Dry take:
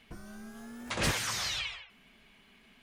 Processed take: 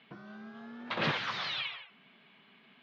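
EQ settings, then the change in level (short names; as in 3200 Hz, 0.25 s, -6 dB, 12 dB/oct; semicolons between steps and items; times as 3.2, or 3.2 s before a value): elliptic band-pass 140–3800 Hz, stop band 40 dB; bell 1200 Hz +3 dB 0.96 oct; 0.0 dB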